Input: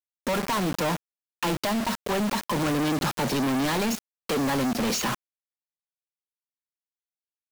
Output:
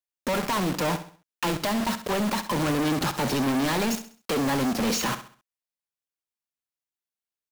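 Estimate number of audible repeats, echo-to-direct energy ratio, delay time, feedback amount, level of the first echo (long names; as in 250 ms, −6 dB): 3, −11.5 dB, 66 ms, 37%, −12.0 dB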